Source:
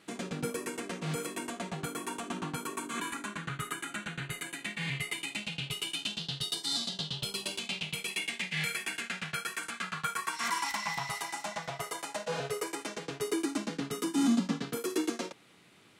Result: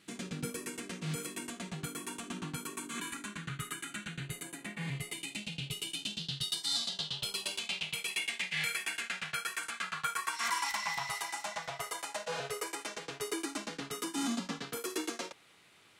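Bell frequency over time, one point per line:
bell -9.5 dB 2.2 oct
4.08 s 710 Hz
4.75 s 4400 Hz
5.22 s 1200 Hz
6.07 s 1200 Hz
6.91 s 210 Hz

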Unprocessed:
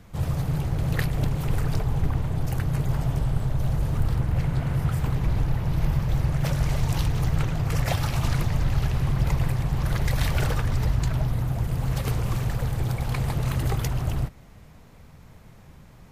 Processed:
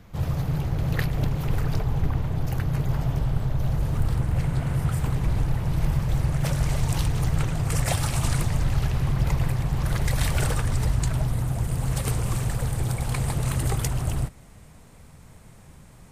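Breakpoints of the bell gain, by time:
bell 8700 Hz 0.6 oct
3.58 s -5 dB
4.24 s +7 dB
7.35 s +7 dB
7.75 s +14 dB
8.35 s +14 dB
8.93 s +2.5 dB
9.59 s +2.5 dB
10.54 s +12 dB

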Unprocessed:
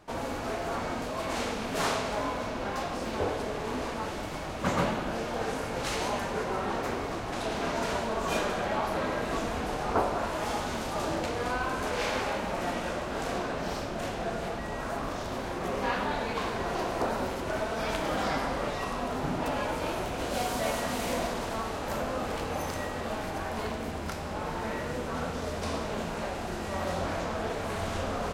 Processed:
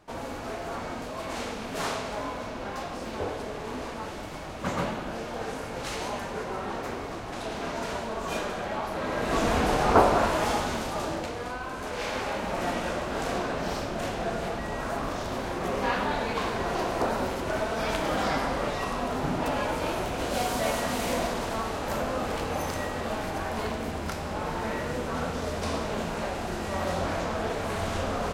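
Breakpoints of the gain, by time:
8.96 s -2 dB
9.51 s +8 dB
10.17 s +8 dB
11.61 s -5 dB
12.63 s +2.5 dB

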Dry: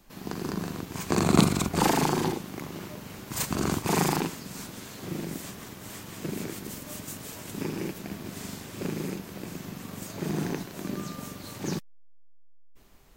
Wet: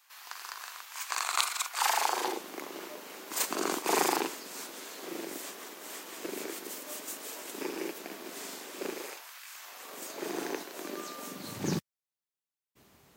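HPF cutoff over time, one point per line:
HPF 24 dB/oct
1.78 s 1000 Hz
2.43 s 330 Hz
8.89 s 330 Hz
9.44 s 1300 Hz
9.99 s 340 Hz
11.2 s 340 Hz
11.61 s 80 Hz

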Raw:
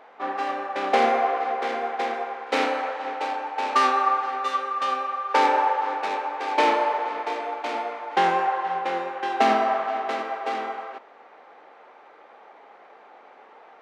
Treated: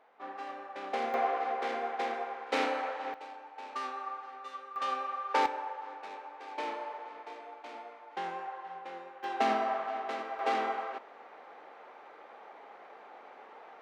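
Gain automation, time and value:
-14 dB
from 1.14 s -7 dB
from 3.14 s -18 dB
from 4.76 s -8 dB
from 5.46 s -17 dB
from 9.24 s -9 dB
from 10.39 s -2 dB

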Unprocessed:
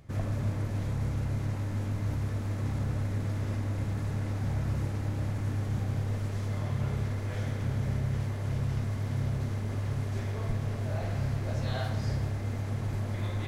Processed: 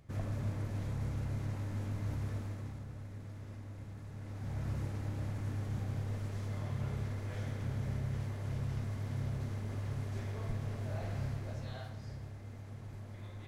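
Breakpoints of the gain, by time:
2.36 s -6 dB
2.85 s -15 dB
4.1 s -15 dB
4.66 s -6.5 dB
11.24 s -6.5 dB
11.98 s -14.5 dB

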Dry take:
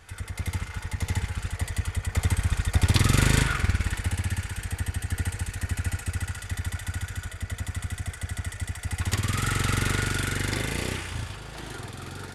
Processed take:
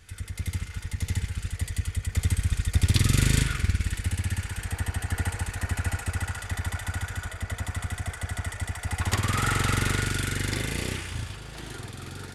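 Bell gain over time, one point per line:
bell 850 Hz 1.8 oct
3.87 s -11 dB
4.35 s -2.5 dB
4.97 s +6.5 dB
9.43 s +6.5 dB
10.17 s -4 dB

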